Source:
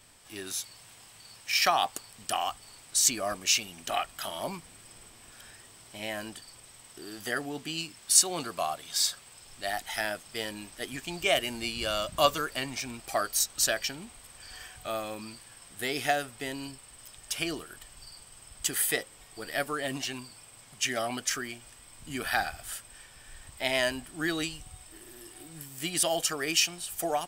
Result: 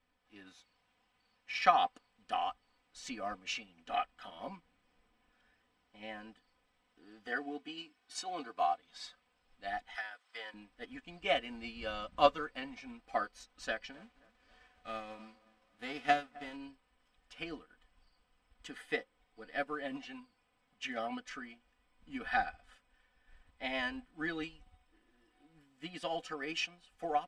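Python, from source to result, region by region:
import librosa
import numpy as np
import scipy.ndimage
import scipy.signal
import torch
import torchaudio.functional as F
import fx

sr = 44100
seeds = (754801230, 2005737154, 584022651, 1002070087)

y = fx.chain(x, sr, fx.highpass(hz=160.0, slope=6),
    fx.comb(ms=2.7, depth=0.54), at=(7.27, 8.78))
y = fx.chain(y, sr, fx.highpass(hz=950.0, slope=12),
    fx.peak_eq(hz=2600.0, db=-5.0, octaves=0.22),
    fx.band_squash(depth_pct=100), at=(9.95, 10.54))
y = fx.envelope_flatten(y, sr, power=0.6, at=(13.92, 16.55), fade=0.02)
y = fx.echo_wet_lowpass(y, sr, ms=264, feedback_pct=50, hz=1700.0, wet_db=-15.0, at=(13.92, 16.55), fade=0.02)
y = scipy.signal.sosfilt(scipy.signal.butter(2, 2600.0, 'lowpass', fs=sr, output='sos'), y)
y = y + 0.79 * np.pad(y, (int(4.0 * sr / 1000.0), 0))[:len(y)]
y = fx.upward_expand(y, sr, threshold_db=-51.0, expansion=1.5)
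y = y * librosa.db_to_amplitude(-2.5)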